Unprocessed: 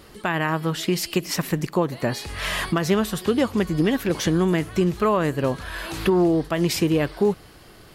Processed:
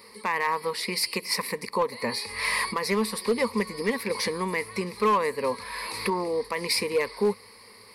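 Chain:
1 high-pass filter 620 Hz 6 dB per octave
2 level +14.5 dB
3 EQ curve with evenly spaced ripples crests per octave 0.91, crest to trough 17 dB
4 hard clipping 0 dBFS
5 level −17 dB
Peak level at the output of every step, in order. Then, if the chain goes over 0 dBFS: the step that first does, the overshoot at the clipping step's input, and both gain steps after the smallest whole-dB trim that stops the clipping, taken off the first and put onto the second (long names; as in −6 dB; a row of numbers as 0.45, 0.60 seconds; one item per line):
−9.5, +5.0, +6.0, 0.0, −17.0 dBFS
step 2, 6.0 dB
step 2 +8.5 dB, step 5 −11 dB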